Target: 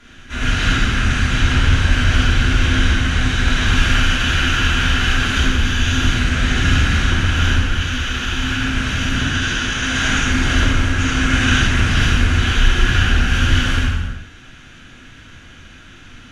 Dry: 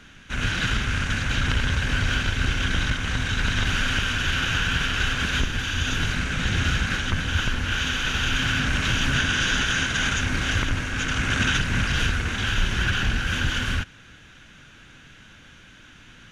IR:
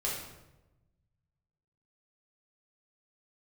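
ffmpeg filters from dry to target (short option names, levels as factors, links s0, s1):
-filter_complex "[0:a]asettb=1/sr,asplit=3[s0][s1][s2];[s0]atrim=end=7.594[s3];[s1]atrim=start=7.59:end=9.83,asetpts=PTS-STARTPTS,afade=t=in:d=0.004:c=qsin,afade=t=out:st=2.236:d=0.004:c=qsin,flanger=delay=8.6:depth=8.6:regen=71:speed=1.1:shape=sinusoidal[s4];[s2]atrim=start=9.826[s5];[s3][s4]acrossfade=d=0.004:c1=hsin:c2=qsin[s6];[s6][s5]acrossfade=d=0.004:c1=qsin:c2=hsin[s7];[1:a]atrim=start_sample=2205,afade=t=out:st=0.31:d=0.01,atrim=end_sample=14112,asetrate=26460,aresample=44100[s8];[s7][s8]afir=irnorm=-1:irlink=0,volume=0.794"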